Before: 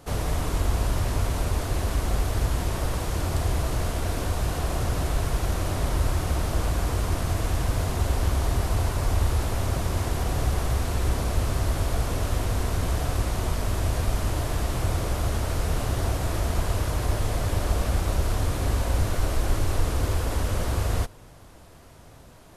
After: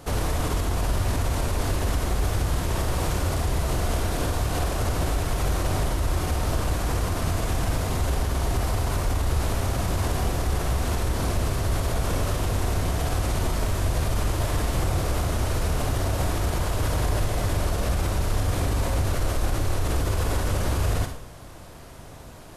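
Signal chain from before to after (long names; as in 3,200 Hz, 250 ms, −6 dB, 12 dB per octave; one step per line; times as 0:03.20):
brickwall limiter −22 dBFS, peak gain reduction 11 dB
on a send: convolution reverb RT60 0.50 s, pre-delay 42 ms, DRR 5.5 dB
on the sum: level +5 dB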